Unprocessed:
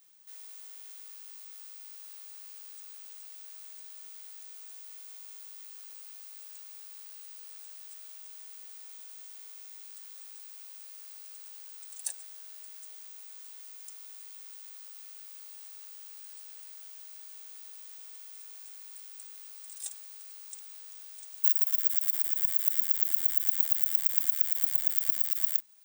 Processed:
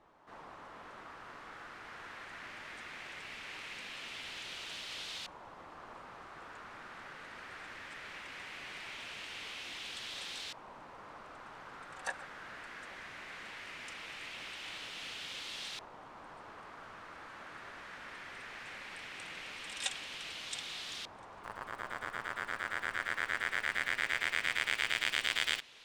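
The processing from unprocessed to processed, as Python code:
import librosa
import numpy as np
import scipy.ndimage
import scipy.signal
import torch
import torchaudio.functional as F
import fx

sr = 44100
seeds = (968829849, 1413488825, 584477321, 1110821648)

y = fx.filter_lfo_lowpass(x, sr, shape='saw_up', hz=0.19, low_hz=950.0, high_hz=3700.0, q=1.9)
y = y * 10.0 ** (16.0 / 20.0)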